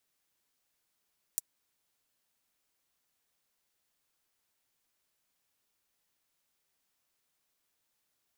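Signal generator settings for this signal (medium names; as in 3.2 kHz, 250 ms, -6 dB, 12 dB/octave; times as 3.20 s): closed hi-hat, high-pass 7.4 kHz, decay 0.03 s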